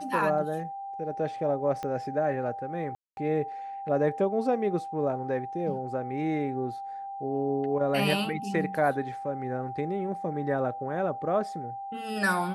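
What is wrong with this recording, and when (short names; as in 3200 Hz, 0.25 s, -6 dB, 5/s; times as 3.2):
tone 790 Hz -35 dBFS
1.83 pop -22 dBFS
2.95–3.17 gap 0.221 s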